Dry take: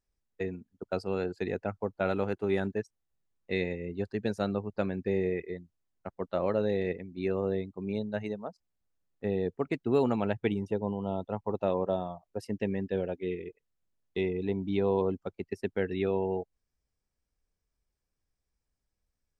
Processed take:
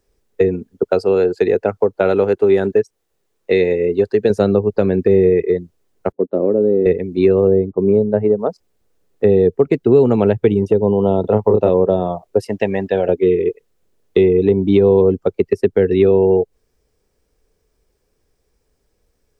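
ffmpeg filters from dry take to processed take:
ffmpeg -i in.wav -filter_complex "[0:a]asettb=1/sr,asplit=3[link_01][link_02][link_03];[link_01]atrim=end=0.854[link_04];[link_02]atrim=start=0.85:end=4.3,asetpts=PTS-STARTPTS,afade=type=in:duration=0.004:curve=qsin,afade=type=out:start_time=3.446:duration=0.004:curve=qsin,lowshelf=frequency=280:gain=-8.5[link_05];[link_03]atrim=start=4.296[link_06];[link_04][link_05]acrossfade=duration=0.004:curve1=hsin:curve2=qsin[link_07];[link_07][link_06]acrossfade=duration=0.004:curve1=qsin:curve2=hsin,asettb=1/sr,asplit=3[link_08][link_09][link_10];[link_08]atrim=end=6.124[link_11];[link_09]atrim=start=6.12:end=6.86,asetpts=PTS-STARTPTS,afade=type=in:duration=0.004:curve=qsin,afade=type=out:start_time=0.736:duration=0.004:curve=qsin,bandpass=frequency=270:width_type=q:width=2[link_12];[link_10]atrim=start=6.856[link_13];[link_11][link_12]acrossfade=duration=0.004:curve1=hsin:curve2=qsin[link_14];[link_14][link_13]acrossfade=duration=0.004:curve1=qsin:curve2=hsin,asettb=1/sr,asplit=3[link_15][link_16][link_17];[link_15]atrim=end=7.474[link_18];[link_16]atrim=start=7.47:end=8.39,asetpts=PTS-STARTPTS,afade=type=in:duration=0.004:curve=qsin,afade=type=out:start_time=0.916:duration=0.004:curve=qsin,lowpass=1100[link_19];[link_17]atrim=start=8.386[link_20];[link_18][link_19]acrossfade=duration=0.004:curve1=hsin:curve2=qsin[link_21];[link_21][link_20]acrossfade=duration=0.004:curve1=qsin:curve2=hsin,asettb=1/sr,asplit=3[link_22][link_23][link_24];[link_22]atrim=end=11.214[link_25];[link_23]atrim=start=11.21:end=11.69,asetpts=PTS-STARTPTS,afade=type=in:duration=0.004:curve=qsin,afade=type=out:start_time=0.476:duration=0.004:curve=qsin,asplit=2[link_26][link_27];[link_27]adelay=28,volume=-3dB[link_28];[link_26][link_28]amix=inputs=2:normalize=0,atrim=end_sample=21168[link_29];[link_24]atrim=start=11.686[link_30];[link_25][link_29]acrossfade=duration=0.004:curve1=hsin:curve2=qsin[link_31];[link_31][link_30]acrossfade=duration=0.004:curve1=qsin:curve2=hsin,asettb=1/sr,asplit=3[link_32][link_33][link_34];[link_32]atrim=end=12.474[link_35];[link_33]atrim=start=12.47:end=13.09,asetpts=PTS-STARTPTS,afade=type=in:duration=0.004:curve=qsin,afade=type=out:start_time=0.616:duration=0.004:curve=qsin,lowshelf=frequency=550:width_type=q:width=3:gain=-7[link_36];[link_34]atrim=start=13.086[link_37];[link_35][link_36]acrossfade=duration=0.004:curve1=hsin:curve2=qsin[link_38];[link_38][link_37]acrossfade=duration=0.004:curve1=qsin:curve2=hsin,equalizer=frequency=430:width_type=o:width=0.8:gain=12.5,acrossover=split=190[link_39][link_40];[link_40]acompressor=threshold=-29dB:ratio=4[link_41];[link_39][link_41]amix=inputs=2:normalize=0,alimiter=level_in=17.5dB:limit=-1dB:release=50:level=0:latency=1,volume=-1dB" out.wav

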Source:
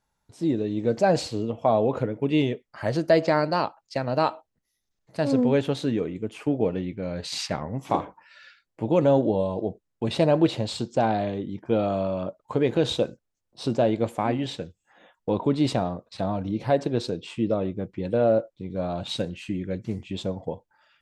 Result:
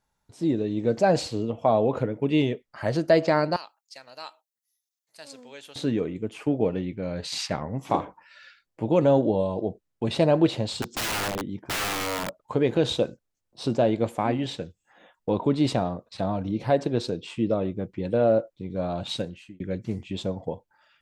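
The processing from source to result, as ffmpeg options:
ffmpeg -i in.wav -filter_complex "[0:a]asettb=1/sr,asplit=3[link_01][link_02][link_03];[link_01]atrim=end=3.564[link_04];[link_02]atrim=start=3.56:end=5.76,asetpts=PTS-STARTPTS,afade=type=in:duration=0.004:curve=qsin,afade=type=out:start_time=2.196:duration=0.004:curve=qsin,aderivative[link_05];[link_03]atrim=start=5.756[link_06];[link_04][link_05]acrossfade=duration=0.004:curve1=hsin:curve2=qsin[link_07];[link_07][link_06]acrossfade=duration=0.004:curve1=qsin:curve2=hsin,asettb=1/sr,asplit=3[link_08][link_09][link_10];[link_08]atrim=end=10.824[link_11];[link_09]atrim=start=10.82:end=12.38,asetpts=PTS-STARTPTS,afade=type=in:duration=0.004:curve=qsin,afade=type=out:start_time=1.556:duration=0.004:curve=qsin,aeval=exprs='(mod(15*val(0)+1,2)-1)/15':channel_layout=same[link_12];[link_10]atrim=start=12.376[link_13];[link_11][link_12]acrossfade=duration=0.004:curve1=hsin:curve2=qsin[link_14];[link_14][link_13]acrossfade=duration=0.004:curve1=qsin:curve2=hsin,asplit=2[link_15][link_16];[link_15]atrim=end=19.6,asetpts=PTS-STARTPTS,afade=type=out:start_time=19.11:duration=0.49[link_17];[link_16]atrim=start=19.6,asetpts=PTS-STARTPTS,afade=type=in:duration=0.004:curve=hsin[link_18];[link_17][link_18]concat=n=2:v=0:a=1" out.wav

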